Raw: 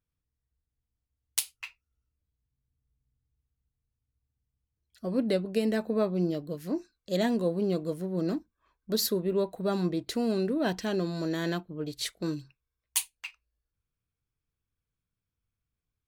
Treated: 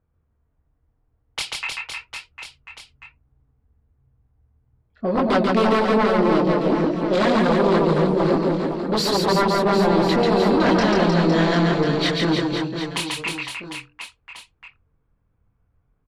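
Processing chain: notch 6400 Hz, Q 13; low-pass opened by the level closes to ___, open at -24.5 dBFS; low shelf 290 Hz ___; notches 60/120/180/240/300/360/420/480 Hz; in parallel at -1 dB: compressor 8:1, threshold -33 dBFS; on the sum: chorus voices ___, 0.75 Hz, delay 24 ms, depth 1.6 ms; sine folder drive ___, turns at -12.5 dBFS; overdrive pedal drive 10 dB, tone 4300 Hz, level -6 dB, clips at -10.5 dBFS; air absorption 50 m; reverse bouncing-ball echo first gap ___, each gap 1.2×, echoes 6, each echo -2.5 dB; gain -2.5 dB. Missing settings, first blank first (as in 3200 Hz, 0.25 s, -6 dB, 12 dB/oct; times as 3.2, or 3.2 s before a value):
950 Hz, +7 dB, 2, 11 dB, 0.14 s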